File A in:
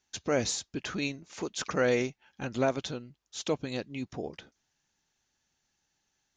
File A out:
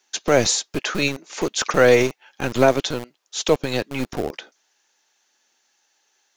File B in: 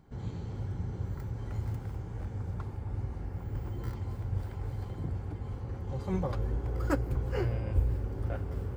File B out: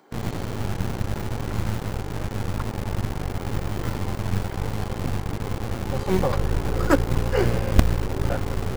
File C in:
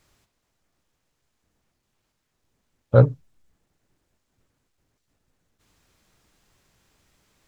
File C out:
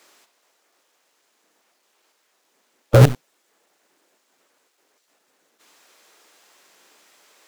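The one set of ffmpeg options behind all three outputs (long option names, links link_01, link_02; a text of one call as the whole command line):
ffmpeg -i in.wav -filter_complex "[0:a]acrossover=split=320|500[link_01][link_02][link_03];[link_01]acrusher=bits=4:dc=4:mix=0:aa=0.000001[link_04];[link_02]aphaser=in_gain=1:out_gain=1:delay=2.5:decay=0.32:speed=0.73:type=triangular[link_05];[link_04][link_05][link_03]amix=inputs=3:normalize=0,alimiter=level_in=13dB:limit=-1dB:release=50:level=0:latency=1,volume=-1dB" out.wav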